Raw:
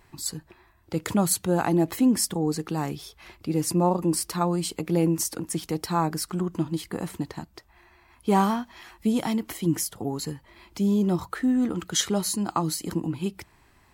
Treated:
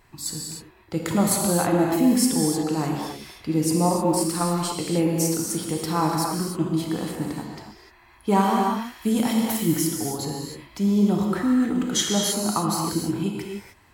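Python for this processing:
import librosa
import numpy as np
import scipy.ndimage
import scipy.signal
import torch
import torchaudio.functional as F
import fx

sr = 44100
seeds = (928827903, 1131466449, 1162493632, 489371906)

y = fx.law_mismatch(x, sr, coded='A', at=(3.9, 4.56))
y = fx.high_shelf(y, sr, hz=fx.line((8.61, 9700.0), (9.7, 4800.0)), db=10.0, at=(8.61, 9.7), fade=0.02)
y = fx.rev_gated(y, sr, seeds[0], gate_ms=330, shape='flat', drr_db=-1.0)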